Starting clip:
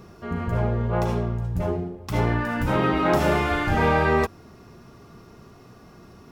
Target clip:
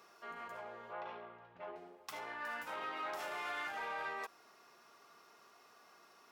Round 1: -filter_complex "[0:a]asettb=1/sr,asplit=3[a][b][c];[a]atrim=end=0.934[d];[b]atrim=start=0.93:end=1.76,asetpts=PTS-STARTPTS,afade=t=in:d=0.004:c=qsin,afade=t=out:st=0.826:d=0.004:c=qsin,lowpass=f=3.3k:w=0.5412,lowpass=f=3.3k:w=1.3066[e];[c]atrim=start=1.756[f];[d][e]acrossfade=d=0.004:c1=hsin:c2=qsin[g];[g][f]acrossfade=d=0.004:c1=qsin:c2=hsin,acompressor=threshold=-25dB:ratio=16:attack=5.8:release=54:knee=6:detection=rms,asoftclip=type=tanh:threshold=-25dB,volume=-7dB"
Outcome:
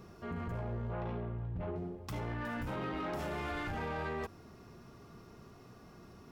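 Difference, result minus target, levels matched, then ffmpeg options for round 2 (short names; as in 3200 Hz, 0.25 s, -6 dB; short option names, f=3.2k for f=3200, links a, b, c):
1000 Hz band -4.0 dB
-filter_complex "[0:a]asettb=1/sr,asplit=3[a][b][c];[a]atrim=end=0.934[d];[b]atrim=start=0.93:end=1.76,asetpts=PTS-STARTPTS,afade=t=in:d=0.004:c=qsin,afade=t=out:st=0.826:d=0.004:c=qsin,lowpass=f=3.3k:w=0.5412,lowpass=f=3.3k:w=1.3066[e];[c]atrim=start=1.756[f];[d][e]acrossfade=d=0.004:c1=hsin:c2=qsin[g];[g][f]acrossfade=d=0.004:c1=qsin:c2=hsin,acompressor=threshold=-25dB:ratio=16:attack=5.8:release=54:knee=6:detection=rms,highpass=820,asoftclip=type=tanh:threshold=-25dB,volume=-7dB"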